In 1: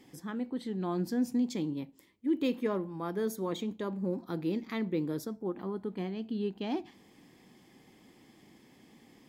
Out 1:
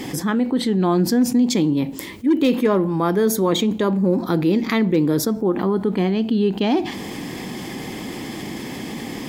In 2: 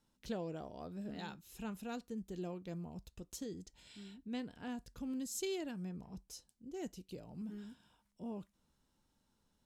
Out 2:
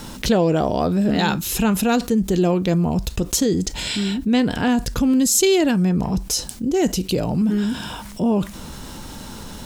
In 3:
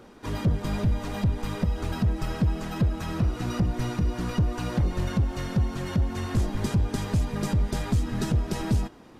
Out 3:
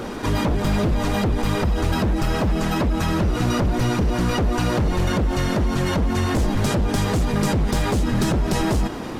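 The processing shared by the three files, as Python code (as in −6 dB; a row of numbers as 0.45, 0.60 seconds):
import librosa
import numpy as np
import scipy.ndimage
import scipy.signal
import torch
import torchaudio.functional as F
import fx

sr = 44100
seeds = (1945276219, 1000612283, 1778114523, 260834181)

y = 10.0 ** (-22.0 / 20.0) * (np.abs((x / 10.0 ** (-22.0 / 20.0) + 3.0) % 4.0 - 2.0) - 1.0)
y = fx.env_flatten(y, sr, amount_pct=50)
y = y * 10.0 ** (-20 / 20.0) / np.sqrt(np.mean(np.square(y)))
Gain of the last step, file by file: +11.5, +22.0, +7.0 decibels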